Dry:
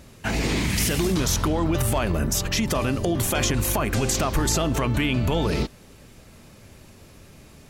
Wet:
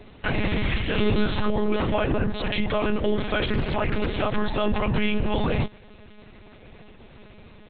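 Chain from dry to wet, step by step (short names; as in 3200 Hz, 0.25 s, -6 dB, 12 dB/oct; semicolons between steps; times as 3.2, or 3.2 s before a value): comb 3.4 ms, depth 70%; limiter -14 dBFS, peak gain reduction 5.5 dB; 0.93–1.49 flutter echo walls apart 3.3 m, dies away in 0.28 s; monotone LPC vocoder at 8 kHz 210 Hz; 3.47–4.06 Doppler distortion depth 0.48 ms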